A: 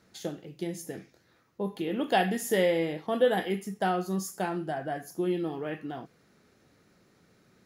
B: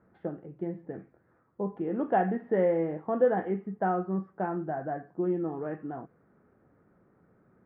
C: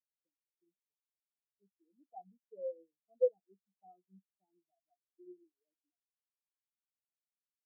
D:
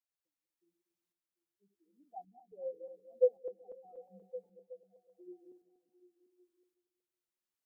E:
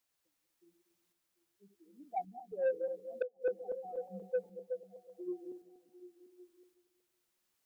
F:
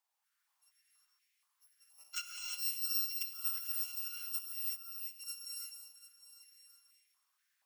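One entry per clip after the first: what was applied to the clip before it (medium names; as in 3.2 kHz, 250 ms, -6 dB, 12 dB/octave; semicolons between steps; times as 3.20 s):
inverse Chebyshev low-pass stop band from 6.3 kHz, stop band 70 dB
spectral contrast expander 4:1; trim -6 dB
backward echo that repeats 120 ms, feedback 55%, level -9 dB; tremolo saw up 0.89 Hz, depth 55%; repeats whose band climbs or falls 371 ms, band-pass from 170 Hz, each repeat 0.7 oct, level -11 dB; trim +3 dB
inverted gate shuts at -27 dBFS, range -28 dB; saturation -36.5 dBFS, distortion -14 dB; trim +11.5 dB
bit-reversed sample order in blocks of 256 samples; gated-style reverb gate 380 ms rising, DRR -2 dB; step-sequenced high-pass 4.2 Hz 820–2200 Hz; trim -5.5 dB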